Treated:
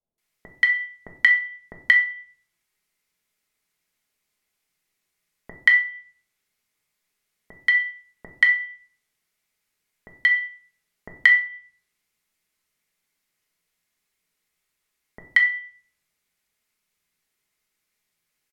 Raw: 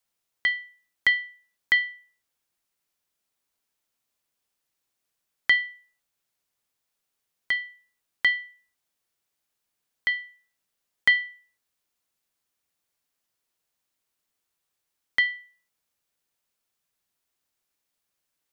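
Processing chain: de-hum 123.7 Hz, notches 30; treble ducked by the level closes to 1500 Hz, closed at -22 dBFS; bell 2100 Hz +8 dB 0.34 oct; bands offset in time lows, highs 0.18 s, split 750 Hz; shoebox room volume 500 m³, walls furnished, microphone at 1.4 m; gain +2.5 dB

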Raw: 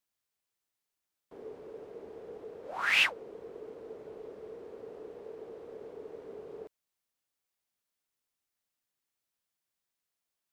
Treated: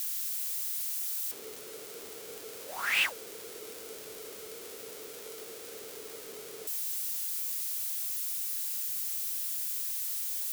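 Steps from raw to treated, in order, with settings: switching spikes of -27.5 dBFS; gain -2.5 dB

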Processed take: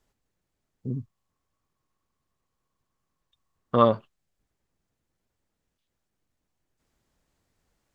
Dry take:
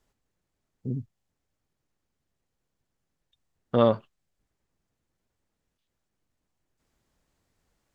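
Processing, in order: 0.9–3.85 bell 1100 Hz +15 dB 0.22 oct

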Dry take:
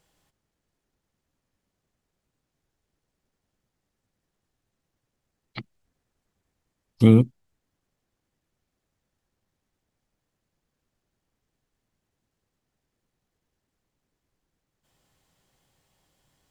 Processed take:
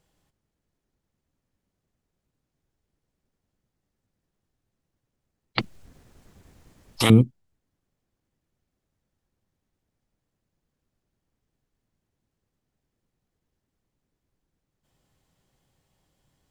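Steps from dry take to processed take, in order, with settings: low shelf 460 Hz +6 dB; 5.58–7.1 spectral compressor 4:1; gain -4 dB

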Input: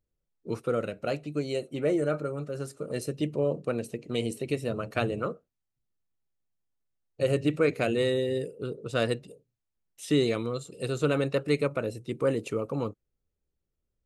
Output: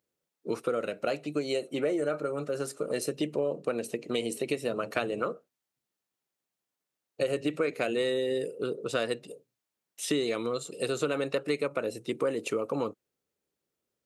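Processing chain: Bessel high-pass 310 Hz, order 2; compressor 4:1, threshold -33 dBFS, peak gain reduction 11 dB; gain +6.5 dB

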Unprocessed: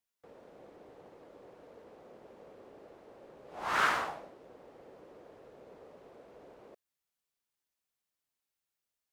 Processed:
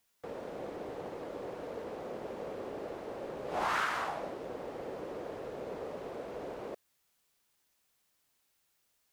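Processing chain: compressor 8:1, threshold -43 dBFS, peak gain reduction 19.5 dB; gain +13 dB

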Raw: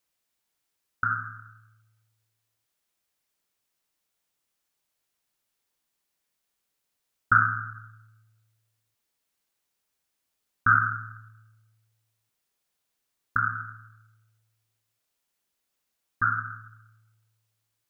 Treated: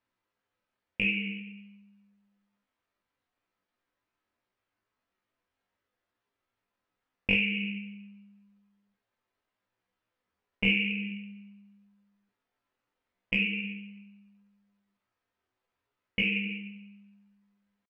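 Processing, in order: LPF 1100 Hz 12 dB/oct; compressor 3:1, threshold -31 dBFS, peak gain reduction 9 dB; pitch shift +10.5 st; non-linear reverb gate 0.12 s falling, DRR 1 dB; gain +4.5 dB

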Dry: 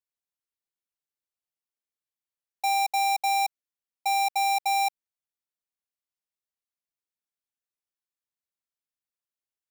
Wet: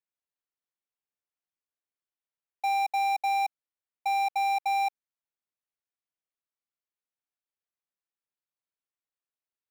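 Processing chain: tone controls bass -4 dB, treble -13 dB; gain -1.5 dB

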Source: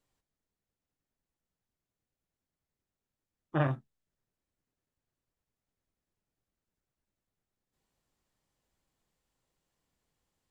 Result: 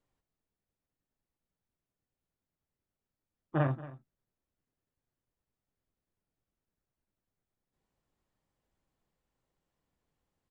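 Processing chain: high shelf 2900 Hz -10 dB; echo 0.229 s -17 dB

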